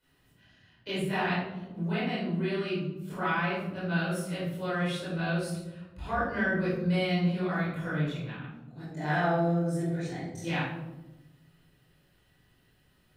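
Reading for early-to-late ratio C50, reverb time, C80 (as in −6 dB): 0.0 dB, 1.1 s, 4.0 dB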